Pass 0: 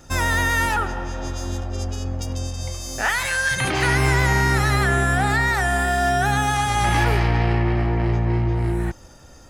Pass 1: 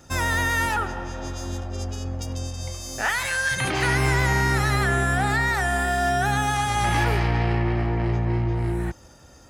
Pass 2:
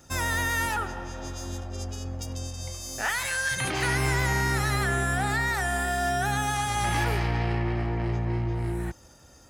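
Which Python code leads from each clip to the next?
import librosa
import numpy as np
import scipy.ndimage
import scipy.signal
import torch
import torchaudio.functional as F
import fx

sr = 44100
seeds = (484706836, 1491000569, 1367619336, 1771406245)

y1 = scipy.signal.sosfilt(scipy.signal.butter(2, 47.0, 'highpass', fs=sr, output='sos'), x)
y1 = y1 * librosa.db_to_amplitude(-2.5)
y2 = fx.high_shelf(y1, sr, hz=5900.0, db=6.0)
y2 = y2 * librosa.db_to_amplitude(-4.5)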